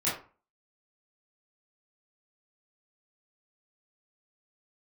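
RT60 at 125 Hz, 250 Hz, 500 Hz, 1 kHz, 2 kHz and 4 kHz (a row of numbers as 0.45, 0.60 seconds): 0.40, 0.40, 0.35, 0.40, 0.30, 0.25 seconds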